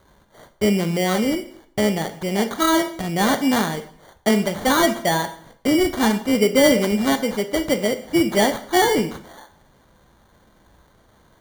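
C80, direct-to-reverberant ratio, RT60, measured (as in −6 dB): 16.0 dB, 8.5 dB, 0.60 s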